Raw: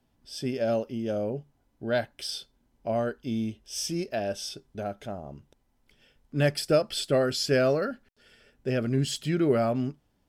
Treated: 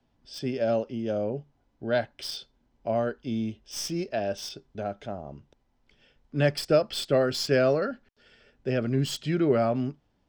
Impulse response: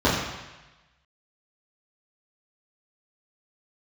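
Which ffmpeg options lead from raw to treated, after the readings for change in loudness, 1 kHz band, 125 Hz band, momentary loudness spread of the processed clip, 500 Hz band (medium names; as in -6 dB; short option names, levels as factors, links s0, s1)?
+0.5 dB, +1.0 dB, 0.0 dB, 15 LU, +1.0 dB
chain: -filter_complex "[0:a]acrossover=split=280|930|7000[s0][s1][s2][s3];[s1]crystalizer=i=7.5:c=0[s4];[s3]acrusher=bits=4:dc=4:mix=0:aa=0.000001[s5];[s0][s4][s2][s5]amix=inputs=4:normalize=0"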